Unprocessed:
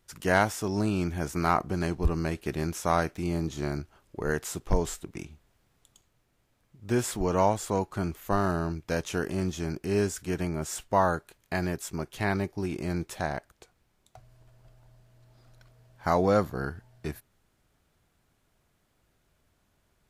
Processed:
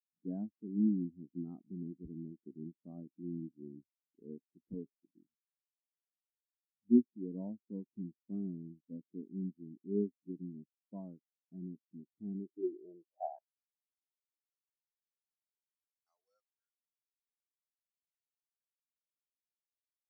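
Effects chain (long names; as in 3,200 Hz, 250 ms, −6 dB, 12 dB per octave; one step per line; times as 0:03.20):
band-pass filter sweep 250 Hz → 6,000 Hz, 0:12.34–0:15.08
every bin expanded away from the loudest bin 2.5 to 1
level +5 dB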